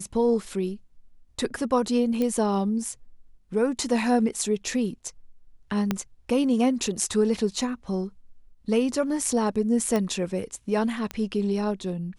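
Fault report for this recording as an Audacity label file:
2.220000	2.220000	pop -15 dBFS
5.910000	5.910000	pop -10 dBFS
9.960000	9.960000	pop -13 dBFS
11.110000	11.110000	pop -16 dBFS

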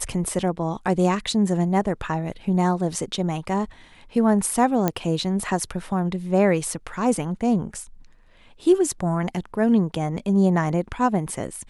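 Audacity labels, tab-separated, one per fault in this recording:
4.880000	4.880000	pop -7 dBFS

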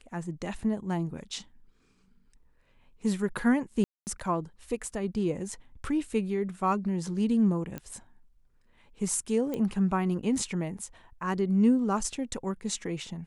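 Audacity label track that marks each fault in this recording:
3.840000	4.070000	dropout 229 ms
7.780000	7.780000	pop -22 dBFS
9.540000	9.540000	pop -20 dBFS

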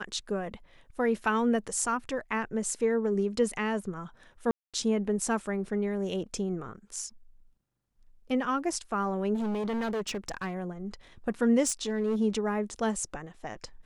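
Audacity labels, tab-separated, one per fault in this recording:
4.510000	4.740000	dropout 226 ms
9.340000	10.550000	clipped -28.5 dBFS
11.670000	12.160000	clipped -23.5 dBFS

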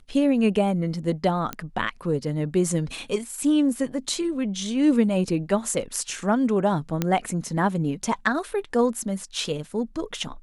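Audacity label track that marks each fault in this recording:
1.530000	1.530000	pop -13 dBFS
7.020000	7.020000	pop -9 dBFS

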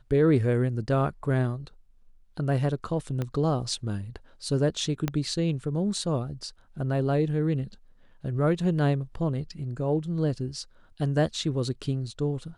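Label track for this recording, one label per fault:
3.220000	3.220000	pop -18 dBFS
5.080000	5.080000	pop -13 dBFS

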